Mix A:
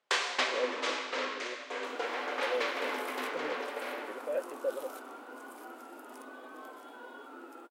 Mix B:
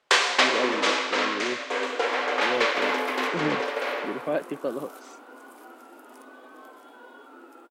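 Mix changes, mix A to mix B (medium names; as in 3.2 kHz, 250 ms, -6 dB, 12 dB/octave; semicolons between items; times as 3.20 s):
speech: remove vowel filter e; first sound +10.0 dB; master: add peaking EQ 93 Hz +10.5 dB 0.74 oct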